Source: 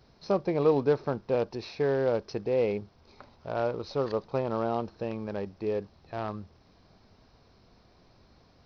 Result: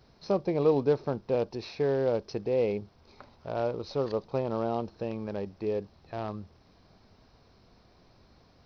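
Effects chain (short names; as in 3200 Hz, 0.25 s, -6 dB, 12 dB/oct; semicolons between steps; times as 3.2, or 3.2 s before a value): dynamic EQ 1500 Hz, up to -5 dB, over -45 dBFS, Q 1.1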